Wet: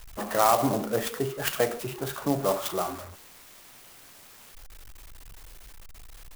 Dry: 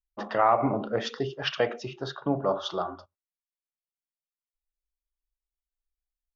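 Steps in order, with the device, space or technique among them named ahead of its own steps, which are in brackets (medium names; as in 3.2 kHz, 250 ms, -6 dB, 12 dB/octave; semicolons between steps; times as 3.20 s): early CD player with a faulty converter (jump at every zero crossing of -37 dBFS; sampling jitter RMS 0.059 ms)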